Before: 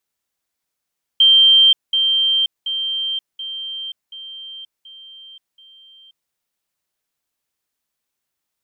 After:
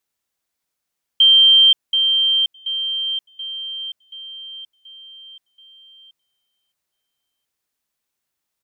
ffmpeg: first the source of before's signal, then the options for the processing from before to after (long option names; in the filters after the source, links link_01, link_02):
-f lavfi -i "aevalsrc='pow(10,(-7.5-6*floor(t/0.73))/20)*sin(2*PI*3150*t)*clip(min(mod(t,0.73),0.53-mod(t,0.73))/0.005,0,1)':duration=5.11:sample_rate=44100"
-filter_complex "[0:a]asplit=2[link_01][link_02];[link_02]adelay=1341,volume=-22dB,highshelf=frequency=4000:gain=-30.2[link_03];[link_01][link_03]amix=inputs=2:normalize=0"